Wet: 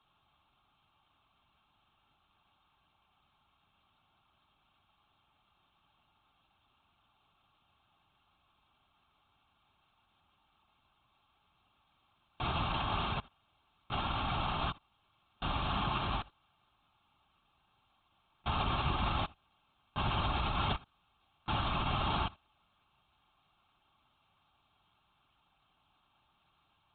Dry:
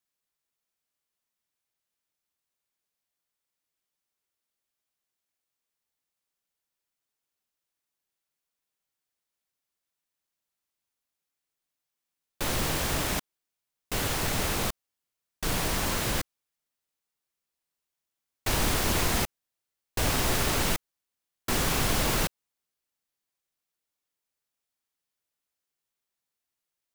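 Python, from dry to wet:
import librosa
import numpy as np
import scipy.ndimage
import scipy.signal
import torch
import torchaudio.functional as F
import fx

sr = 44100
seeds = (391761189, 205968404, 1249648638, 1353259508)

y = fx.bin_compress(x, sr, power=0.6)
y = fx.peak_eq(y, sr, hz=830.0, db=6.0, octaves=1.6)
y = fx.fixed_phaser(y, sr, hz=1900.0, stages=6)
y = y + 10.0 ** (-23.0 / 20.0) * np.pad(y, (int(75 * sr / 1000.0), 0))[:len(y)]
y = fx.lpc_vocoder(y, sr, seeds[0], excitation='whisper', order=16)
y = fx.notch_comb(y, sr, f0_hz=490.0)
y = y * 10.0 ** (-6.0 / 20.0)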